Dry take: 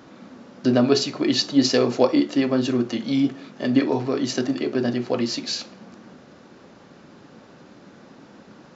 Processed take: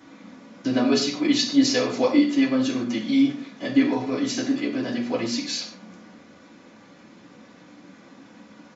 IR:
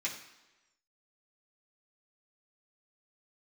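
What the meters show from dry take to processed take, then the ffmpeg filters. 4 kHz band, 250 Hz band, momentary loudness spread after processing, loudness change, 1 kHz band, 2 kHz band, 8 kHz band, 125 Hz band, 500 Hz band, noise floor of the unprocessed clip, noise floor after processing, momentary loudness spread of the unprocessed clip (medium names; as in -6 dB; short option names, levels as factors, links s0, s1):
-1.0 dB, 0.0 dB, 8 LU, -1.0 dB, -2.0 dB, +1.5 dB, no reading, -7.0 dB, -4.5 dB, -49 dBFS, -50 dBFS, 7 LU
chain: -filter_complex "[0:a]aecho=1:1:4.1:0.34[s0];[1:a]atrim=start_sample=2205,afade=t=out:st=0.2:d=0.01,atrim=end_sample=9261[s1];[s0][s1]afir=irnorm=-1:irlink=0,volume=0.708"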